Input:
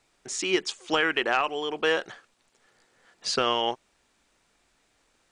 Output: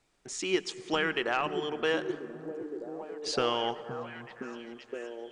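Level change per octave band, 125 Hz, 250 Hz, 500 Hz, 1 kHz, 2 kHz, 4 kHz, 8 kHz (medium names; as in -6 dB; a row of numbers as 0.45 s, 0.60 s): +2.0 dB, -0.5 dB, -2.0 dB, -4.5 dB, -5.5 dB, -6.0 dB, -6.0 dB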